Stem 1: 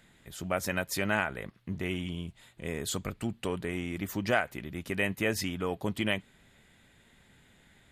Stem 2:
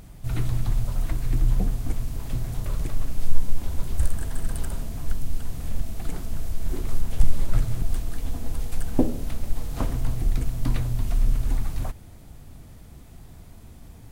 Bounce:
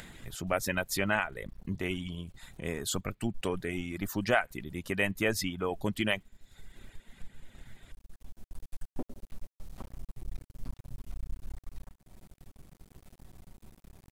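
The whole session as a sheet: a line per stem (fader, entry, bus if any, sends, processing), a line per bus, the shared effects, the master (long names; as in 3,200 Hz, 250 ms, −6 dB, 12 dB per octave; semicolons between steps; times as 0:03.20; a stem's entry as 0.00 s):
+1.0 dB, 0.00 s, no send, reverb reduction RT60 0.82 s
−16.5 dB, 0.00 s, no send, comb filter 5.3 ms, depth 46%; half-wave rectification; automatic ducking −12 dB, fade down 0.70 s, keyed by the first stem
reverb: not used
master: upward compression, threshold −38 dBFS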